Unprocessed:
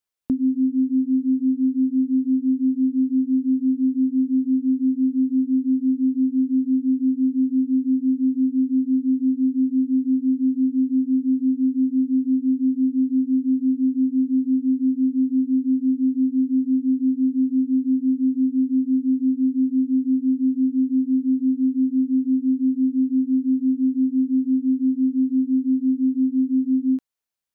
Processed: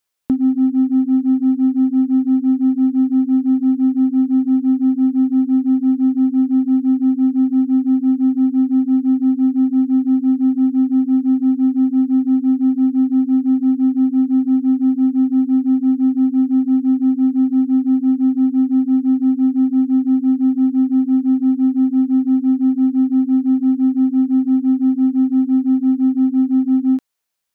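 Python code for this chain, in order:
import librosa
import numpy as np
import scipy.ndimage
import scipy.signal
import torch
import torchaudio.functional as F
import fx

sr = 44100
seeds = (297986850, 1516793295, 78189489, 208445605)

p1 = fx.low_shelf(x, sr, hz=330.0, db=-5.0)
p2 = np.clip(p1, -10.0 ** (-26.5 / 20.0), 10.0 ** (-26.5 / 20.0))
p3 = p1 + (p2 * 10.0 ** (-11.0 / 20.0))
y = p3 * 10.0 ** (7.0 / 20.0)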